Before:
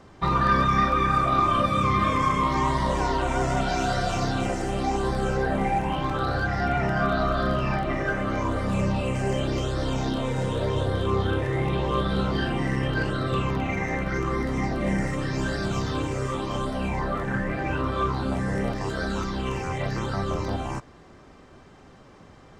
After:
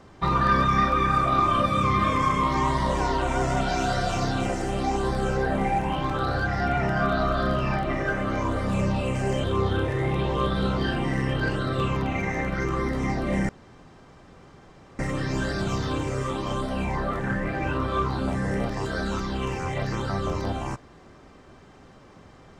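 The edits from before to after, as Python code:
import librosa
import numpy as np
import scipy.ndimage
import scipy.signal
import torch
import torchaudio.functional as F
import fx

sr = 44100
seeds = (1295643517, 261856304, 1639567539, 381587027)

y = fx.edit(x, sr, fx.cut(start_s=9.44, length_s=1.54),
    fx.insert_room_tone(at_s=15.03, length_s=1.5), tone=tone)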